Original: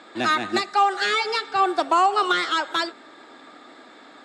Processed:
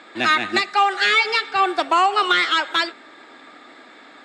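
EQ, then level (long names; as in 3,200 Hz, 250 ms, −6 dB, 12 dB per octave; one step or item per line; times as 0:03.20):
parametric band 2,200 Hz +6 dB 1 octave
dynamic equaliser 2,900 Hz, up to +4 dB, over −31 dBFS, Q 0.99
0.0 dB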